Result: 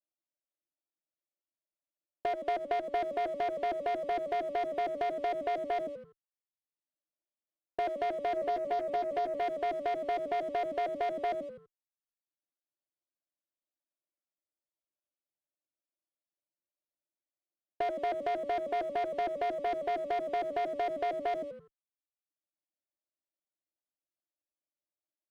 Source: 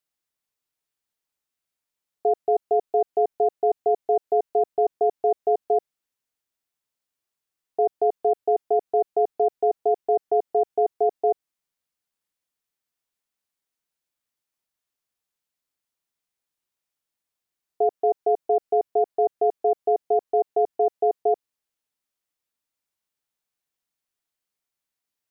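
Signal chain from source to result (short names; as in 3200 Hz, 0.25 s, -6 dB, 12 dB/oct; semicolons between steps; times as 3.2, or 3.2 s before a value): FFT order left unsorted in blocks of 16 samples; double band-pass 440 Hz, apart 0.81 oct; frequency-shifting echo 84 ms, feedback 46%, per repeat -65 Hz, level -13.5 dB; limiter -28 dBFS, peak gain reduction 5 dB; sample leveller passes 2; 8.35–9.41 doubler 14 ms -3.5 dB; reverb removal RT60 0.72 s; compressor, threshold -35 dBFS, peak gain reduction 8 dB; 2.27–2.99 transient shaper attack +2 dB, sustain -7 dB; running maximum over 3 samples; gain +5.5 dB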